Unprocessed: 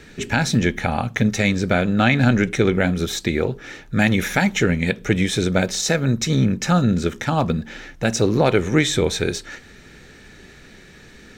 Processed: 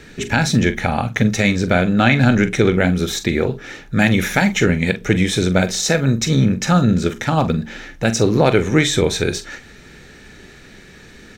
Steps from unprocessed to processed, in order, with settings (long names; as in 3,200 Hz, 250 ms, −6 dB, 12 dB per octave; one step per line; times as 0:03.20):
double-tracking delay 44 ms −12 dB
level +2.5 dB